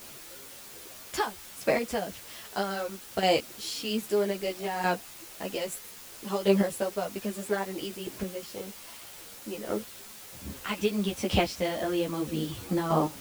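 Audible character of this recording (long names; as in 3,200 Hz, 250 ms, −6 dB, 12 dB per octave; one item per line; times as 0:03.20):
chopped level 0.62 Hz, depth 60%, duty 10%
a quantiser's noise floor 8 bits, dither triangular
a shimmering, thickened sound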